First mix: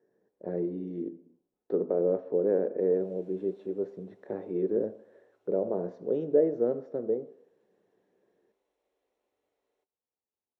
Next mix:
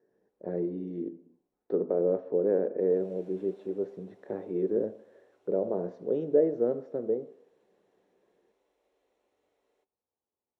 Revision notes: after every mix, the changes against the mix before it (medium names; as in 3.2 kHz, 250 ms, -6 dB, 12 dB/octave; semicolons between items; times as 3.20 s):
background +5.5 dB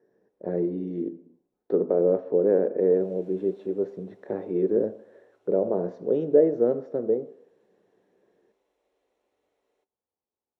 speech +5.0 dB